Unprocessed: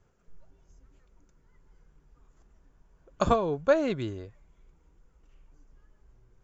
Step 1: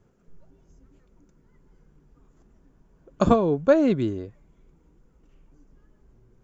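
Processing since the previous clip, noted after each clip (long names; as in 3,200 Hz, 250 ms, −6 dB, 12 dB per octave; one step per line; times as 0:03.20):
parametric band 240 Hz +10.5 dB 2.1 octaves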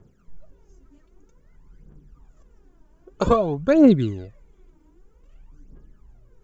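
phase shifter 0.52 Hz, delay 3.4 ms, feedback 67%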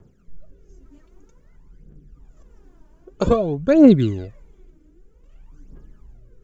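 rotating-speaker cabinet horn 0.65 Hz
level +5 dB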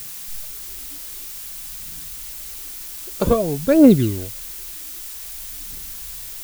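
background noise blue −34 dBFS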